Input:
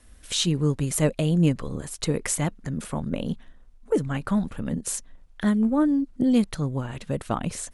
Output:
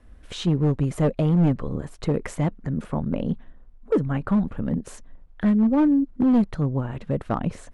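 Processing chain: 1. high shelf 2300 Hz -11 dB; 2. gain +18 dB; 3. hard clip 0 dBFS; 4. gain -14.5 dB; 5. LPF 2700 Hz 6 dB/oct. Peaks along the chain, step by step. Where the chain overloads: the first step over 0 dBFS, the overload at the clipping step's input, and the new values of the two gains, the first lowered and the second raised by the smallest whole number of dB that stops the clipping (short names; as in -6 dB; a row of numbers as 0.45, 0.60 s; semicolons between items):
-9.0, +9.0, 0.0, -14.5, -14.5 dBFS; step 2, 9.0 dB; step 2 +9 dB, step 4 -5.5 dB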